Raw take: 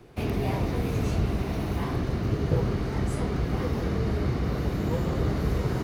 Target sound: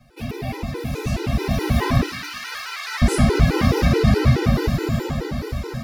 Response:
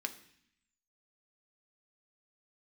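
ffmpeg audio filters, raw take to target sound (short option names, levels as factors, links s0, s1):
-filter_complex "[0:a]asettb=1/sr,asplit=3[s0][s1][s2];[s0]atrim=end=2.034[s3];[s1]atrim=start=2.03:end=3.02,asetpts=PTS-STARTPTS,afade=t=in:d=0.004:c=qsin,afade=t=out:st=0.986:d=0.004:c=qsin,highpass=f=1200:w=0.5412,highpass=f=1200:w=1.3066[s4];[s2]atrim=start=3.016[s5];[s3][s4]acrossfade=d=0.004:c1=hsin:c2=qsin[s6];[s6][s5]acrossfade=d=0.004:c1=qsin:c2=hsin,dynaudnorm=f=220:g=13:m=6.31,asplit=2[s7][s8];[1:a]atrim=start_sample=2205,highshelf=f=2000:g=9,adelay=9[s9];[s8][s9]afir=irnorm=-1:irlink=0,volume=0.708[s10];[s7][s10]amix=inputs=2:normalize=0,afftfilt=real='re*gt(sin(2*PI*4.7*pts/sr)*(1-2*mod(floor(b*sr/1024/260),2)),0)':imag='im*gt(sin(2*PI*4.7*pts/sr)*(1-2*mod(floor(b*sr/1024/260),2)),0)':win_size=1024:overlap=0.75"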